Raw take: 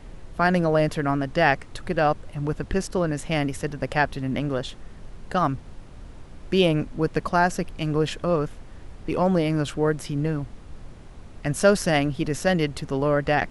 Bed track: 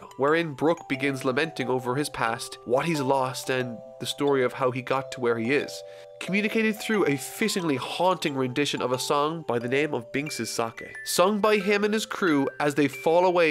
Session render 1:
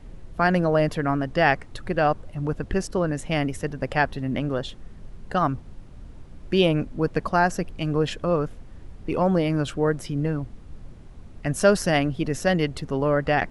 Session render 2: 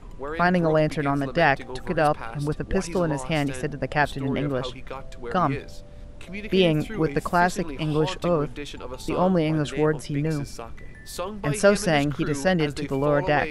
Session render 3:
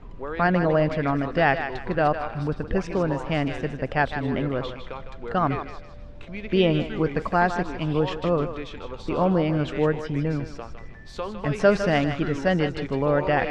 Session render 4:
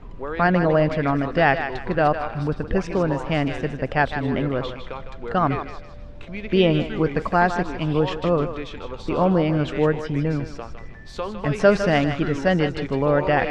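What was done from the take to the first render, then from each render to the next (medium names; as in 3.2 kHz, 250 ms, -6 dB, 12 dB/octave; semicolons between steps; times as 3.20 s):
noise reduction 6 dB, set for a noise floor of -43 dBFS
add bed track -10.5 dB
distance through air 160 m; thinning echo 156 ms, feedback 35%, high-pass 570 Hz, level -8 dB
trim +2.5 dB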